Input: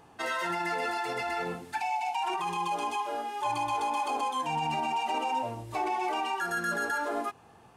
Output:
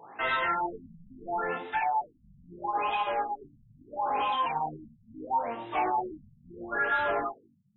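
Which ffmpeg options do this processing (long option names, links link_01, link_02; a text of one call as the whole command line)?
ffmpeg -i in.wav -filter_complex "[0:a]highpass=140,asplit=2[link_01][link_02];[link_02]highpass=frequency=720:poles=1,volume=17dB,asoftclip=type=tanh:threshold=-20dB[link_03];[link_01][link_03]amix=inputs=2:normalize=0,lowpass=frequency=7900:poles=1,volume=-6dB,flanger=delay=18.5:depth=2.6:speed=1,afftfilt=real='re*lt(b*sr/1024,210*pow(4000/210,0.5+0.5*sin(2*PI*0.75*pts/sr)))':imag='im*lt(b*sr/1024,210*pow(4000/210,0.5+0.5*sin(2*PI*0.75*pts/sr)))':win_size=1024:overlap=0.75,volume=1.5dB" out.wav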